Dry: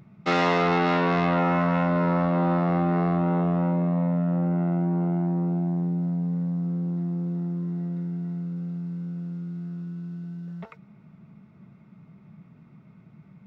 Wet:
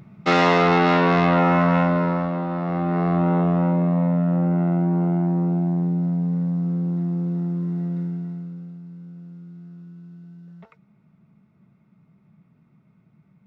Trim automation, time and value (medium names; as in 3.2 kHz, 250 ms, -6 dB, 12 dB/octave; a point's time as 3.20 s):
1.79 s +5 dB
2.48 s -4 dB
3.20 s +4 dB
8.03 s +4 dB
8.79 s -7 dB